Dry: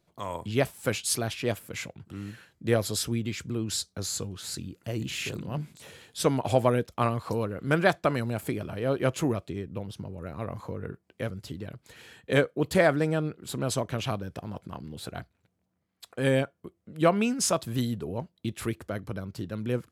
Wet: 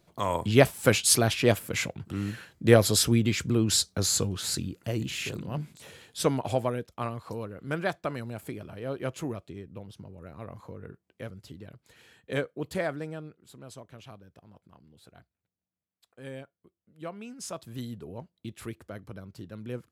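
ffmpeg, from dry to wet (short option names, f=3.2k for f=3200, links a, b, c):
-af "volume=16dB,afade=t=out:st=4.38:d=0.75:silence=0.446684,afade=t=out:st=6.23:d=0.51:silence=0.473151,afade=t=out:st=12.55:d=1:silence=0.316228,afade=t=in:st=17.23:d=0.75:silence=0.334965"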